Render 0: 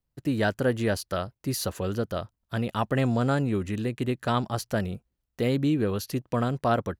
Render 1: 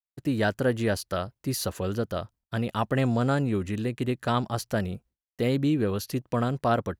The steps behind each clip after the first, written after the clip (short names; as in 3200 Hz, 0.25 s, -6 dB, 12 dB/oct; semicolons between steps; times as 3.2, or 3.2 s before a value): expander -50 dBFS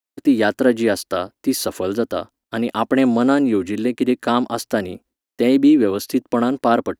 resonant low shelf 200 Hz -9.5 dB, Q 3; gain +7 dB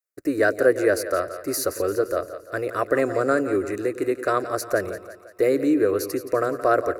fixed phaser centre 870 Hz, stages 6; split-band echo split 490 Hz, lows 0.102 s, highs 0.172 s, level -12 dB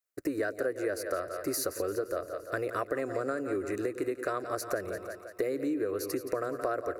compressor 6:1, threshold -29 dBFS, peak gain reduction 16 dB